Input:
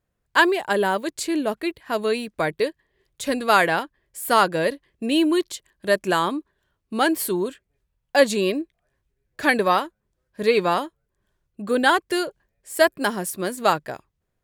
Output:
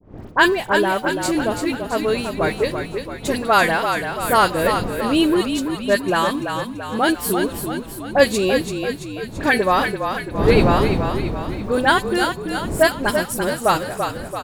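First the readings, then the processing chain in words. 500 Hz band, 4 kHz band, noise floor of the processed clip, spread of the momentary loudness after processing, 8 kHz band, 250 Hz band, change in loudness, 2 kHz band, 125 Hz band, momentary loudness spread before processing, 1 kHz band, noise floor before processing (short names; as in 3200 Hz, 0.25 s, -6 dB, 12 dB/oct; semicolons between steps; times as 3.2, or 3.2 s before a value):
+3.5 dB, +3.0 dB, -34 dBFS, 9 LU, +3.0 dB, +4.5 dB, +2.5 dB, +3.0 dB, +11.5 dB, 13 LU, +3.0 dB, -77 dBFS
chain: wind noise 320 Hz -32 dBFS; de-hum 253.6 Hz, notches 28; expander -35 dBFS; in parallel at -11 dB: sample gate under -29.5 dBFS; on the sum: dispersion highs, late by 48 ms, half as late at 2200 Hz; on a send: frequency-shifting echo 0.336 s, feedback 55%, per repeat -36 Hz, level -6.5 dB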